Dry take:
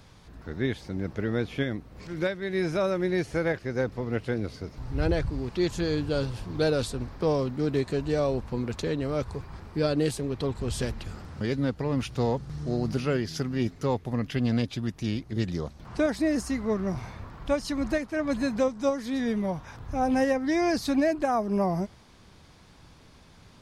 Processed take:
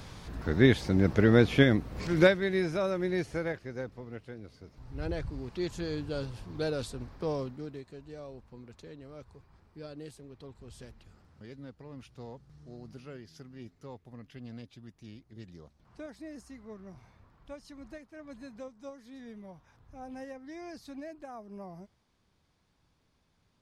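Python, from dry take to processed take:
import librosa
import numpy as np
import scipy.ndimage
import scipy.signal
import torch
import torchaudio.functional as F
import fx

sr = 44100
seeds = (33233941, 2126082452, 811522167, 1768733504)

y = fx.gain(x, sr, db=fx.line((2.28, 7.0), (2.68, -4.0), (3.21, -4.0), (4.37, -16.0), (5.27, -7.5), (7.42, -7.5), (7.84, -19.0)))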